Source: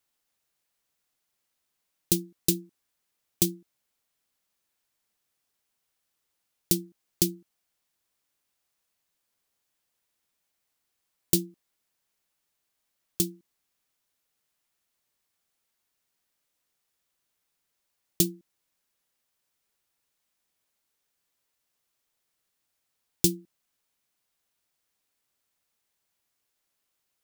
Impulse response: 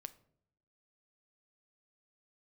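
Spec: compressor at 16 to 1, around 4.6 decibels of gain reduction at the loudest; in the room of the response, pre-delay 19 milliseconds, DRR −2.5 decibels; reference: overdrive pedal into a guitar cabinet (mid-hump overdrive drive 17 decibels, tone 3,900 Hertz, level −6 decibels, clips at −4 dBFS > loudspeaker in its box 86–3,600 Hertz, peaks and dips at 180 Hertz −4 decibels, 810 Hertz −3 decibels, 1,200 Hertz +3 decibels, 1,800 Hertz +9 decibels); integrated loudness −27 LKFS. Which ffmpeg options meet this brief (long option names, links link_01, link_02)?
-filter_complex "[0:a]acompressor=threshold=-22dB:ratio=16,asplit=2[link_01][link_02];[1:a]atrim=start_sample=2205,adelay=19[link_03];[link_02][link_03]afir=irnorm=-1:irlink=0,volume=7.5dB[link_04];[link_01][link_04]amix=inputs=2:normalize=0,asplit=2[link_05][link_06];[link_06]highpass=frequency=720:poles=1,volume=17dB,asoftclip=type=tanh:threshold=-4dB[link_07];[link_05][link_07]amix=inputs=2:normalize=0,lowpass=frequency=3900:poles=1,volume=-6dB,highpass=86,equalizer=frequency=180:width_type=q:width=4:gain=-4,equalizer=frequency=810:width_type=q:width=4:gain=-3,equalizer=frequency=1200:width_type=q:width=4:gain=3,equalizer=frequency=1800:width_type=q:width=4:gain=9,lowpass=frequency=3600:width=0.5412,lowpass=frequency=3600:width=1.3066,volume=8.5dB"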